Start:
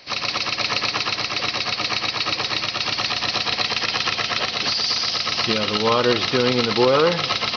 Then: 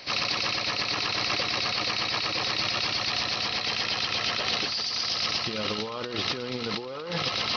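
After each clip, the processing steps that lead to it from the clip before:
compressor whose output falls as the input rises −27 dBFS, ratio −1
level −2.5 dB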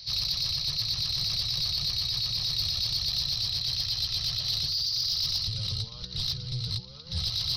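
sub-octave generator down 1 octave, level +4 dB
drawn EQ curve 140 Hz 0 dB, 240 Hz −25 dB, 640 Hz −20 dB, 1,600 Hz −20 dB, 2,700 Hz −16 dB, 4,000 Hz +4 dB, 7,900 Hz −2 dB
soft clipping −20 dBFS, distortion −19 dB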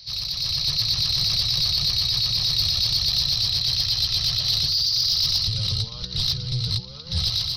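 automatic gain control gain up to 7 dB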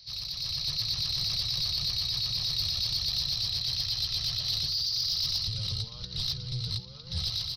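slap from a distant wall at 89 metres, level −18 dB
level −8 dB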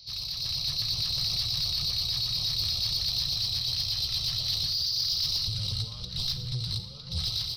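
in parallel at −9.5 dB: soft clipping −37.5 dBFS, distortion −7 dB
on the sum: auto-filter notch square 5.5 Hz 420–1,700 Hz
four-comb reverb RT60 0.76 s, combs from 26 ms, DRR 9.5 dB

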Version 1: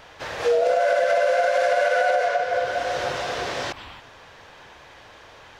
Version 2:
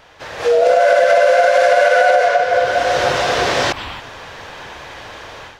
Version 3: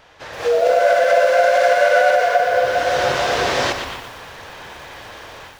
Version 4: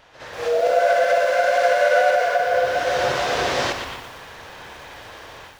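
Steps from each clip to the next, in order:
automatic gain control gain up to 13 dB
feedback echo at a low word length 119 ms, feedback 55%, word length 6 bits, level −8 dB; level −3 dB
backwards echo 66 ms −9 dB; level −3.5 dB

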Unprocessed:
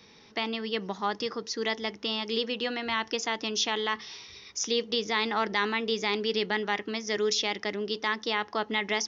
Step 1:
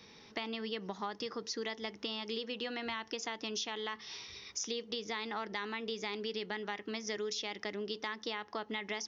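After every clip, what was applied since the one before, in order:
downward compressor, threshold −34 dBFS, peak gain reduction 11.5 dB
level −1.5 dB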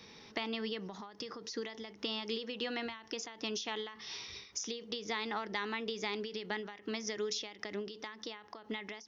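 every ending faded ahead of time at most 100 dB per second
level +2 dB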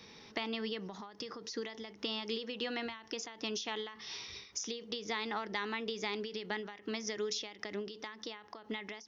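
no processing that can be heard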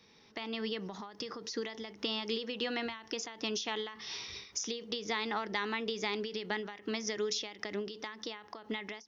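automatic gain control gain up to 11 dB
level −8.5 dB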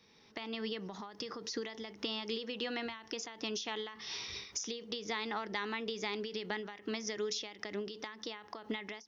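camcorder AGC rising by 7.4 dB per second
level −3 dB

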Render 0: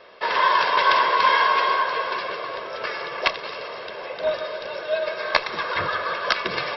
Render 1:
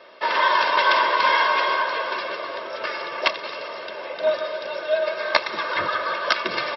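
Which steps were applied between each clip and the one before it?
high-pass filter 130 Hz 12 dB per octave
comb filter 3.3 ms, depth 40%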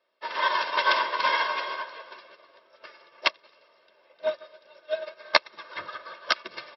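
high-shelf EQ 4,000 Hz +5.5 dB
expander for the loud parts 2.5 to 1, over −32 dBFS
level −1 dB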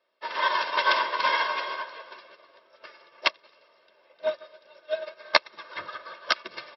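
no processing that can be heard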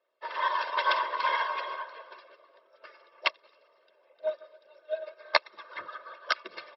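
spectral envelope exaggerated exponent 1.5
level −3.5 dB

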